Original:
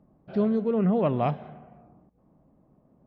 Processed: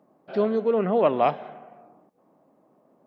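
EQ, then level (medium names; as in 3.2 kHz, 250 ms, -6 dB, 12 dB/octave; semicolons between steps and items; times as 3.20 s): high-pass 380 Hz 12 dB/octave; +6.5 dB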